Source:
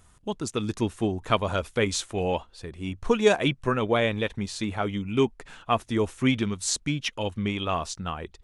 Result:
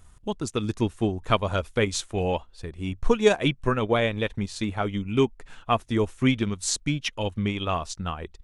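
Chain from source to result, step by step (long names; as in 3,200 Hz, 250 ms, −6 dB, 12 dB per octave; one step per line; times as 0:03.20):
transient designer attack +1 dB, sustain −5 dB
low-shelf EQ 66 Hz +11 dB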